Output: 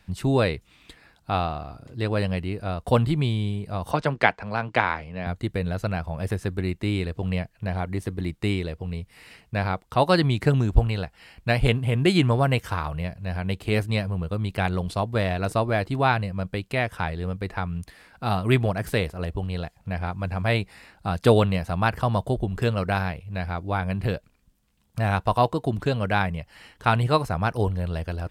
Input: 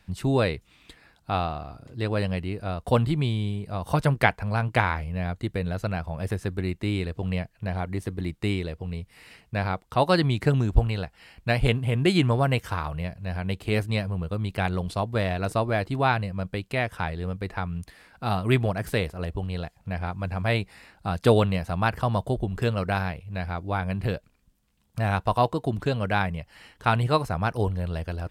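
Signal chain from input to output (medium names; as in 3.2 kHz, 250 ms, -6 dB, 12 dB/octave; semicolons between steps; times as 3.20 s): 3.91–5.27 s: three-band isolator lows -12 dB, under 190 Hz, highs -23 dB, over 6.9 kHz; trim +1.5 dB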